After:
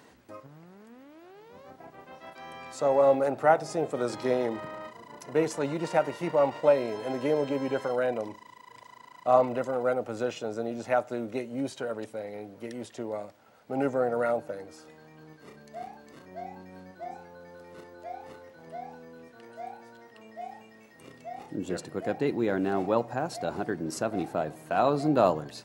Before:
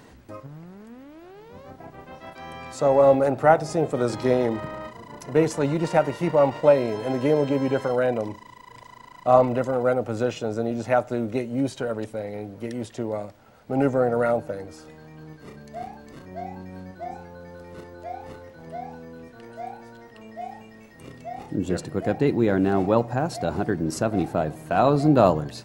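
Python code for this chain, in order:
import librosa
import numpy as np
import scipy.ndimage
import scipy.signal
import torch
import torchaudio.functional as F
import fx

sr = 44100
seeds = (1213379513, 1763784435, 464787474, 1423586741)

y = fx.highpass(x, sr, hz=290.0, slope=6)
y = F.gain(torch.from_numpy(y), -4.0).numpy()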